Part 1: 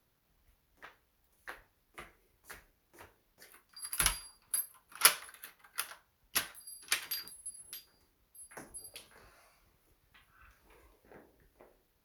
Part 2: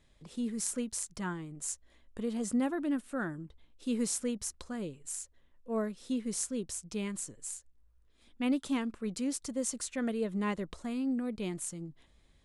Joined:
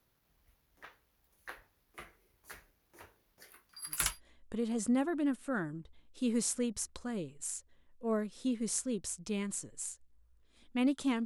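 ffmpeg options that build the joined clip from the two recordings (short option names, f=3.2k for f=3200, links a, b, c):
-filter_complex "[0:a]apad=whole_dur=11.25,atrim=end=11.25,atrim=end=4.21,asetpts=PTS-STARTPTS[a];[1:a]atrim=start=1.5:end=8.9,asetpts=PTS-STARTPTS[b];[a][b]acrossfade=d=0.36:c1=qsin:c2=qsin"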